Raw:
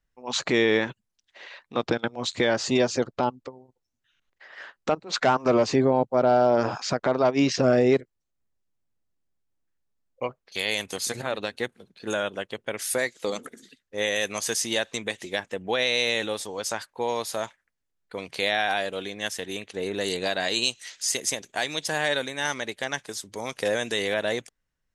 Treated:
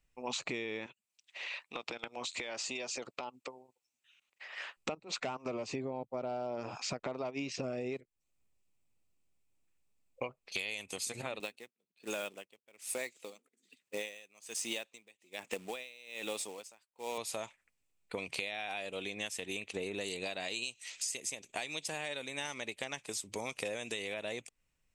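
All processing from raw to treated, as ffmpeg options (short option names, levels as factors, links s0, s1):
-filter_complex "[0:a]asettb=1/sr,asplit=3[s0][s1][s2];[s0]atrim=end=0.864[s3];[s1]atrim=start=0.86:end=4.77,asetpts=PTS-STARTPTS,afade=t=in:d=0.004:c=qsin,afade=t=out:st=3.906:d=0.004:c=qsin,highpass=f=880:p=1,acompressor=threshold=0.0158:ratio=6:attack=3.2:release=140:knee=1:detection=peak[s4];[s2]atrim=start=4.766[s5];[s3][s4]acrossfade=d=0.004:c1=hsin:c2=qsin[s6];[s6][s5]acrossfade=d=0.004:c1=qsin:c2=hsin,asettb=1/sr,asplit=3[s7][s8][s9];[s7]atrim=end=11.404[s10];[s8]atrim=start=11.4:end=17.18,asetpts=PTS-STARTPTS,afade=t=in:d=0.004:c=qsin,afade=t=out:st=5.776:d=0.004:c=qsin,acrusher=bits=3:mode=log:mix=0:aa=0.000001,highpass=190,aeval=exprs='val(0)*pow(10,-36*(0.5-0.5*cos(2*PI*1.2*n/s))/20)':c=same[s11];[s9]atrim=start=17.176[s12];[s10][s11]acrossfade=d=0.004:c1=hsin:c2=qsin[s13];[s13][s12]acrossfade=d=0.004:c1=qsin:c2=hsin,equalizer=f=1600:t=o:w=0.33:g=-7,equalizer=f=2500:t=o:w=0.33:g=10,equalizer=f=8000:t=o:w=0.33:g=8,acompressor=threshold=0.0158:ratio=12,volume=1.12"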